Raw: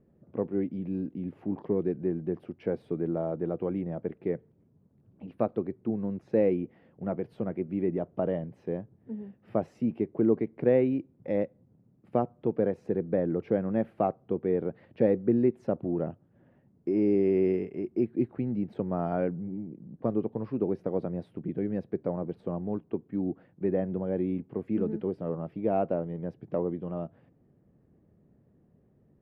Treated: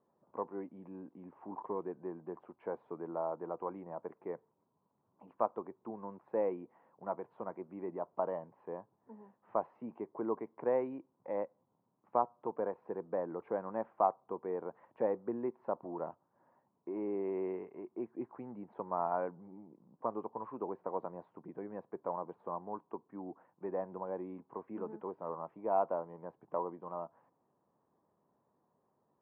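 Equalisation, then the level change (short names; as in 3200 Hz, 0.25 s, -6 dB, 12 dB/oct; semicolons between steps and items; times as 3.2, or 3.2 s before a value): band-pass 990 Hz, Q 6; air absorption 270 m; +11.5 dB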